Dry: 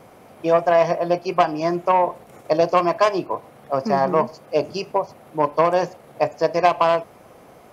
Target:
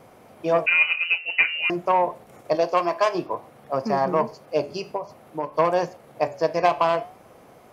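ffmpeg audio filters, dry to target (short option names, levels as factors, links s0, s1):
-filter_complex "[0:a]asettb=1/sr,asplit=3[s0][s1][s2];[s0]atrim=end=2.554[s3];[s1]atrim=start=2.55:end=3.15,asetpts=PTS-STARTPTS,afade=t=in:d=0.004:c=qsin,afade=t=out:st=0.596:d=0.004:c=qsin,equalizer=f=87:t=o:w=2.3:g=-13.5[s4];[s2]atrim=start=3.146[s5];[s3][s4]acrossfade=d=0.004:c1=hsin:c2=qsin[s6];[s6][s5]acrossfade=d=0.004:c1=qsin:c2=hsin,asplit=3[s7][s8][s9];[s7]afade=t=out:st=4.64:d=0.02[s10];[s8]acompressor=threshold=0.0891:ratio=6,afade=t=in:st=4.64:d=0.02,afade=t=out:st=5.54:d=0.02[s11];[s9]afade=t=in:st=5.54:d=0.02[s12];[s10][s11][s12]amix=inputs=3:normalize=0,flanger=delay=7.9:depth=5.4:regen=-82:speed=0.52:shape=sinusoidal,asettb=1/sr,asplit=3[s13][s14][s15];[s13]atrim=end=0.664[s16];[s14]atrim=start=0.66:end=1.7,asetpts=PTS-STARTPTS,afade=t=in:d=0.004:c=qsin,afade=t=out:st=1.036:d=0.004:c=qsin,lowpass=f=2600:t=q:w=0.5098,lowpass=f=2600:t=q:w=0.6013,lowpass=f=2600:t=q:w=0.9,lowpass=f=2600:t=q:w=2.563,afreqshift=-3100[s17];[s15]atrim=start=1.696[s18];[s16][s17]acrossfade=d=0.004:c1=hsin:c2=qsin[s19];[s19][s18]acrossfade=d=0.004:c1=qsin:c2=hsin,volume=1.19"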